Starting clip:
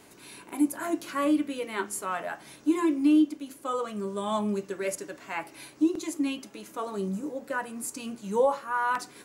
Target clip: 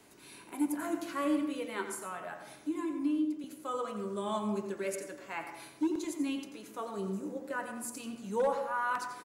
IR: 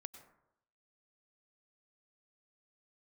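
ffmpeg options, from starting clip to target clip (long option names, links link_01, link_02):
-filter_complex "[0:a]asettb=1/sr,asplit=3[link_01][link_02][link_03];[link_01]atrim=end=1.934[link_04];[link_02]atrim=start=1.93:end=3.44,asetpts=PTS-STARTPTS,afade=type=in:duration=0.004:curve=qsin,afade=type=out:start_time=1.506:duration=0.004:curve=qsin,acrossover=split=230[link_05][link_06];[link_06]acompressor=threshold=-35dB:ratio=2[link_07];[link_05][link_07]amix=inputs=2:normalize=0[link_08];[link_03]atrim=start=3.436[link_09];[link_04][link_08]acrossfade=duration=0.004:curve1=hsin:curve2=qsin[link_10];[link_10][link_09]acrossfade=duration=0.004:curve1=qsin:curve2=hsin,acrossover=split=120|990|1800[link_11][link_12][link_13][link_14];[link_12]volume=19dB,asoftclip=hard,volume=-19dB[link_15];[link_11][link_15][link_13][link_14]amix=inputs=4:normalize=0,asplit=2[link_16][link_17];[link_17]adelay=87.46,volume=-10dB,highshelf=frequency=4000:gain=-1.97[link_18];[link_16][link_18]amix=inputs=2:normalize=0[link_19];[1:a]atrim=start_sample=2205[link_20];[link_19][link_20]afir=irnorm=-1:irlink=0"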